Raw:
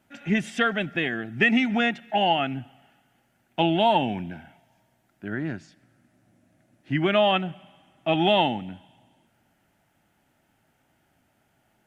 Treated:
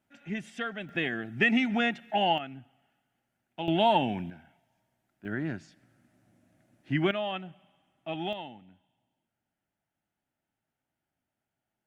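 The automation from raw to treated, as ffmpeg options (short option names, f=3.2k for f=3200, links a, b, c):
-af "asetnsamples=n=441:p=0,asendcmd='0.89 volume volume -4dB;2.38 volume volume -13dB;3.68 volume volume -3dB;4.3 volume volume -10dB;5.25 volume volume -3dB;7.11 volume volume -12.5dB;8.33 volume volume -19.5dB',volume=-11.5dB"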